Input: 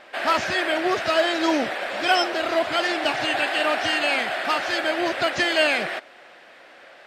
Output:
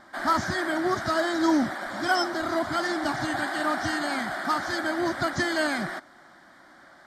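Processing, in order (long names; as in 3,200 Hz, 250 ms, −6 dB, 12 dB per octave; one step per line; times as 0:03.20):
low shelf with overshoot 500 Hz +7 dB, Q 1.5
phaser with its sweep stopped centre 1,100 Hz, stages 4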